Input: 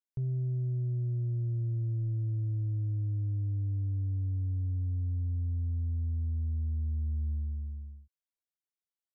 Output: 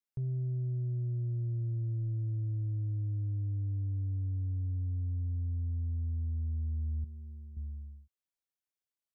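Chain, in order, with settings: 7.04–7.57 s: peaking EQ 98 Hz -12 dB 2.6 oct; trim -2 dB

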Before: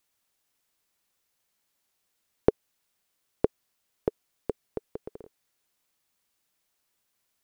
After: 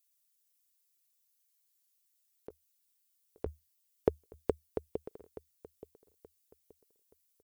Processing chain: expander on every frequency bin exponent 1.5; 2.49–4.92 s: peaking EQ 76 Hz +12.5 dB 0.44 oct; compressor with a negative ratio -29 dBFS, ratio -0.5; bass shelf 200 Hz -6 dB; feedback delay 876 ms, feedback 31%, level -17 dB; trim +2.5 dB

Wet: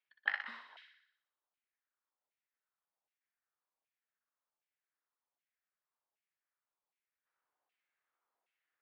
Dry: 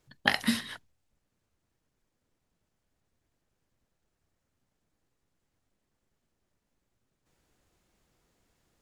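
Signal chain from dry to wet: on a send: thinning echo 61 ms, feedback 68%, high-pass 1.1 kHz, level -4 dB; on the sum: LFO band-pass saw down 1.3 Hz 800–2600 Hz; band-pass 330–4000 Hz; trim -6.5 dB

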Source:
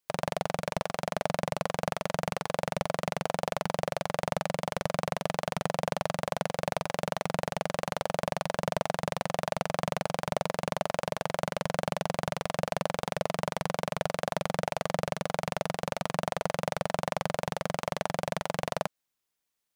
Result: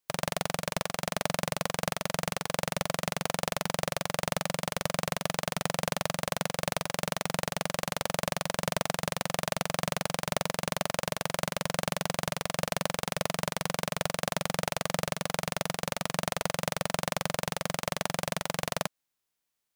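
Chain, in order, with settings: formants flattened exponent 0.6

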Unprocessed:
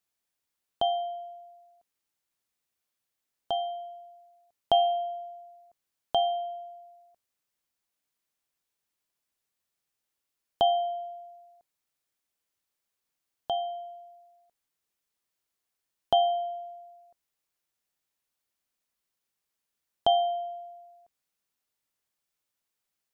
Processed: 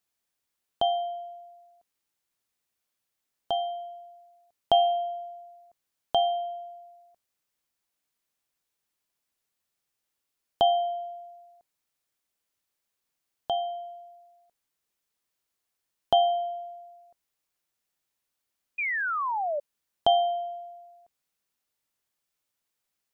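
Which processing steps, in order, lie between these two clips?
painted sound fall, 18.78–19.60 s, 560–2500 Hz -30 dBFS; trim +1.5 dB

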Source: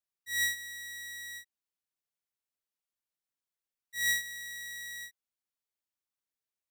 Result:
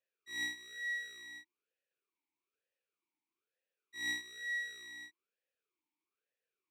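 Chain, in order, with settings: dynamic bell 1.6 kHz, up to -5 dB, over -46 dBFS, Q 2; talking filter e-u 1.1 Hz; trim +17.5 dB

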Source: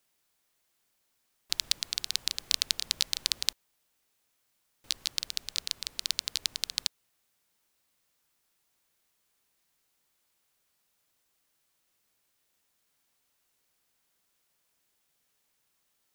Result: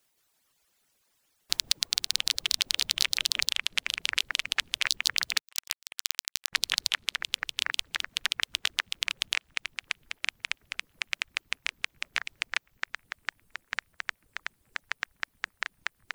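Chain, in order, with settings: on a send: feedback echo behind a band-pass 466 ms, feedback 65%, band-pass 1.6 kHz, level -22 dB; on the sum: peak limiter -7.5 dBFS, peak gain reduction 6 dB; ever faster or slower copies 169 ms, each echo -5 st, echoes 3; 5.39–6.53 s: power-law waveshaper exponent 3; reverb removal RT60 1.1 s; harmonic-percussive split harmonic -9 dB; trim +6.5 dB

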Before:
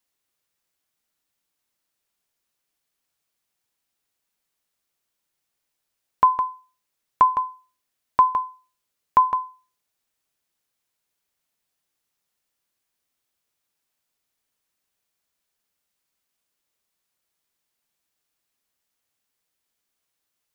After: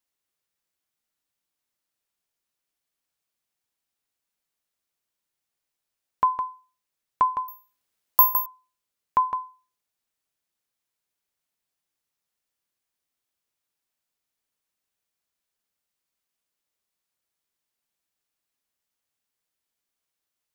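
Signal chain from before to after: 7.48–8.46 s: careless resampling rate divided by 3×, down none, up zero stuff; trim -5 dB

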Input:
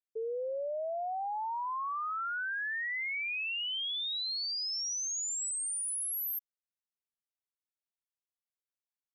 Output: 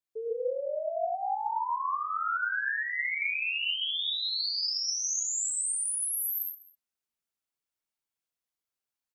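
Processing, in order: delay 200 ms -21 dB; gated-style reverb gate 170 ms rising, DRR -2 dB

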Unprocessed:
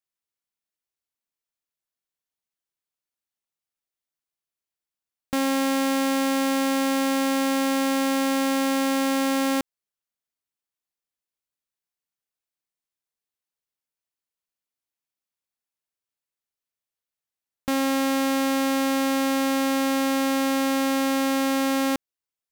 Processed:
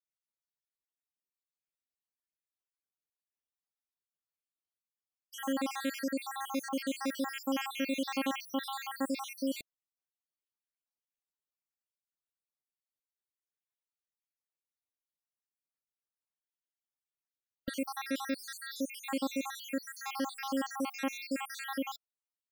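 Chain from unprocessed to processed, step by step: random holes in the spectrogram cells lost 76%; 7.35–8.70 s: dynamic bell 2.9 kHz, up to +5 dB, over -51 dBFS, Q 2.3; 19.69–21.08 s: de-hum 385.8 Hz, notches 6; trim -6.5 dB

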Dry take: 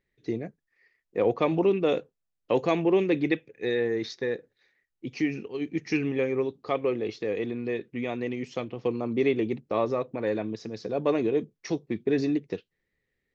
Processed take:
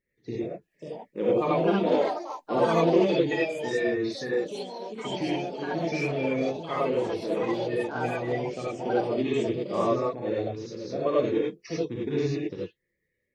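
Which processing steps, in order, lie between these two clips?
coarse spectral quantiser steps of 30 dB; gated-style reverb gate 120 ms rising, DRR -6 dB; ever faster or slower copies 612 ms, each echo +5 st, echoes 2, each echo -6 dB; trim -6 dB

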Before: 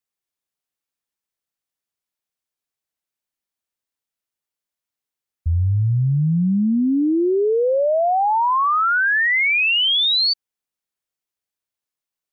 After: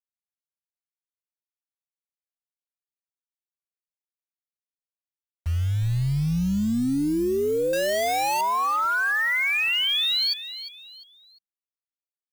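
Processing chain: 7.73–8.41 s: one-bit comparator; bit crusher 6-bit; on a send: frequency-shifting echo 350 ms, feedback 35%, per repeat -68 Hz, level -13 dB; on the sum: trim -6 dB

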